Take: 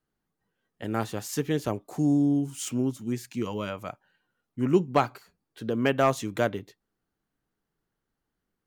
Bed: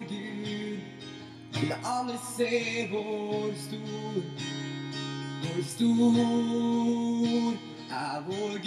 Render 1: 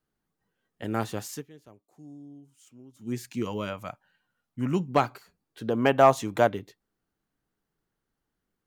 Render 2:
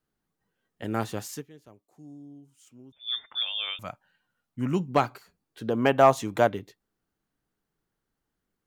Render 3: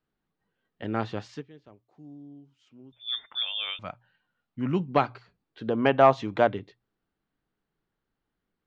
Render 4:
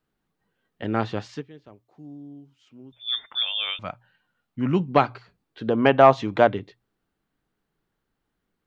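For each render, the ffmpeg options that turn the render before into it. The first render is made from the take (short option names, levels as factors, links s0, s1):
-filter_complex "[0:a]asettb=1/sr,asplit=3[s0][s1][s2];[s0]atrim=end=3.734[s3];[s1]atrim=start=3.73:end=4.89,asetpts=PTS-STARTPTS,afade=t=in:d=0.004:c=qsin,afade=t=out:st=1.156:d=0.004:c=qsin,equalizer=f=380:t=o:w=0.67:g=-8.5[s4];[s2]atrim=start=4.886[s5];[s3][s4]acrossfade=d=0.004:c1=hsin:c2=qsin[s6];[s6][s5]acrossfade=d=0.004:c1=qsin:c2=hsin,asettb=1/sr,asplit=3[s7][s8][s9];[s7]atrim=end=5.684[s10];[s8]atrim=start=5.68:end=6.48,asetpts=PTS-STARTPTS,afade=t=in:d=0.004:c=qsin,afade=t=out:st=0.796:d=0.004:c=qsin,equalizer=f=820:t=o:w=0.84:g=9.5[s11];[s9]atrim=start=6.476[s12];[s10][s11]acrossfade=d=0.004:c1=hsin:c2=qsin[s13];[s13][s12]acrossfade=d=0.004:c1=qsin:c2=hsin,asplit=3[s14][s15][s16];[s14]atrim=end=1.46,asetpts=PTS-STARTPTS,afade=t=out:st=1.22:d=0.24:silence=0.0668344[s17];[s15]atrim=start=1.46:end=2.93,asetpts=PTS-STARTPTS,volume=0.0668[s18];[s16]atrim=start=2.93,asetpts=PTS-STARTPTS,afade=t=in:d=0.24:silence=0.0668344[s19];[s17][s18][s19]concat=n=3:v=0:a=1"
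-filter_complex "[0:a]asettb=1/sr,asplit=3[s0][s1][s2];[s0]atrim=end=2.924[s3];[s1]atrim=start=2.92:end=3.79,asetpts=PTS-STARTPTS,afade=t=in:d=0.004:c=qsin,afade=t=out:st=0.866:d=0.004:c=qsin,lowpass=f=3100:t=q:w=0.5098,lowpass=f=3100:t=q:w=0.6013,lowpass=f=3100:t=q:w=0.9,lowpass=f=3100:t=q:w=2.563,afreqshift=-3700[s4];[s2]atrim=start=3.786[s5];[s3][s4]acrossfade=d=0.004:c1=hsin:c2=qsin[s6];[s6][s5]acrossfade=d=0.004:c1=qsin:c2=hsin"
-af "lowpass=f=4300:w=0.5412,lowpass=f=4300:w=1.3066,bandreject=f=60:t=h:w=6,bandreject=f=120:t=h:w=6"
-af "volume=1.68,alimiter=limit=0.708:level=0:latency=1"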